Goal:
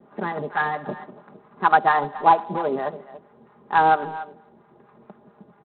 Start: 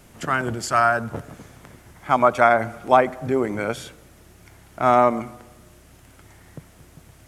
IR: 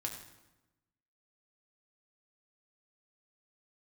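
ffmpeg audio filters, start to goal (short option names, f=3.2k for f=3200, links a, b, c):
-filter_complex "[0:a]highpass=170,asplit=2[a][b];[b]adelay=370,highpass=300,lowpass=3.4k,asoftclip=type=hard:threshold=-10dB,volume=-16dB[c];[a][c]amix=inputs=2:normalize=0,adynamicequalizer=threshold=0.0282:dfrequency=730:dqfactor=4.6:tfrequency=730:tqfactor=4.6:attack=5:release=100:ratio=0.375:range=1.5:mode=cutabove:tftype=bell,asetrate=56889,aresample=44100,aecho=1:1:4.9:0.64,acrossover=split=750[d][e];[d]aeval=exprs='val(0)*(1-0.7/2+0.7/2*cos(2*PI*4.4*n/s))':c=same[f];[e]aeval=exprs='val(0)*(1-0.7/2-0.7/2*cos(2*PI*4.4*n/s))':c=same[g];[f][g]amix=inputs=2:normalize=0,lowpass=f=1.3k:w=0.5412,lowpass=f=1.3k:w=1.3066,volume=3.5dB" -ar 8000 -c:a adpcm_ima_wav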